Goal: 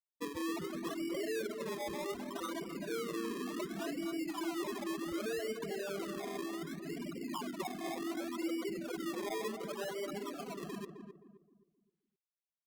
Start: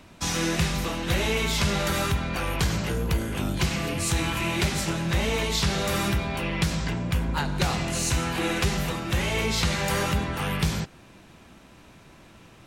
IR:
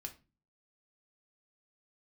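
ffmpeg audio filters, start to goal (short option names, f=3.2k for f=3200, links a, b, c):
-filter_complex "[0:a]acrossover=split=1300[a][b];[b]acompressor=threshold=-38dB:ratio=16[c];[a][c]amix=inputs=2:normalize=0,highpass=f=230:w=0.5412,highpass=f=230:w=1.3066,equalizer=f=520:t=q:w=4:g=-8,equalizer=f=840:t=q:w=4:g=-9,equalizer=f=1.4k:t=q:w=4:g=-4,equalizer=f=2k:t=q:w=4:g=-7,lowpass=f=2.1k:w=0.5412,lowpass=f=2.1k:w=1.3066,aresample=11025,asoftclip=type=hard:threshold=-36dB,aresample=44100,acrossover=split=320|1600[d][e][f];[d]acompressor=threshold=-56dB:ratio=4[g];[e]acompressor=threshold=-46dB:ratio=4[h];[f]acompressor=threshold=-53dB:ratio=4[i];[g][h][i]amix=inputs=3:normalize=0,afftfilt=real='re*gte(hypot(re,im),0.0251)':imag='im*gte(hypot(re,im),0.0251)':win_size=1024:overlap=0.75,acrusher=samples=24:mix=1:aa=0.000001:lfo=1:lforange=14.4:lforate=0.67,asplit=2[j][k];[k]adelay=262,lowpass=f=850:p=1,volume=-6dB,asplit=2[l][m];[m]adelay=262,lowpass=f=850:p=1,volume=0.38,asplit=2[n][o];[o]adelay=262,lowpass=f=850:p=1,volume=0.38,asplit=2[p][q];[q]adelay=262,lowpass=f=850:p=1,volume=0.38,asplit=2[r][s];[s]adelay=262,lowpass=f=850:p=1,volume=0.38[t];[j][l][n][p][r][t]amix=inputs=6:normalize=0,volume=10dB" -ar 48000 -c:a libopus -b:a 64k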